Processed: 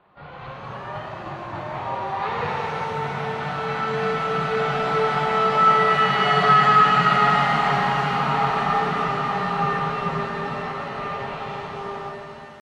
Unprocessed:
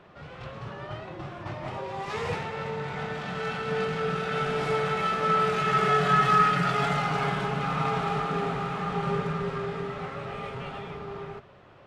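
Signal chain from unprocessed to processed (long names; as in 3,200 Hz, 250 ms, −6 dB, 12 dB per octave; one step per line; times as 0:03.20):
noise gate −47 dBFS, range −9 dB
parametric band 910 Hz +8.5 dB 0.9 octaves
tempo change 0.94×
elliptic low-pass filter 4,400 Hz
reverb with rising layers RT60 2.8 s, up +7 semitones, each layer −8 dB, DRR 0 dB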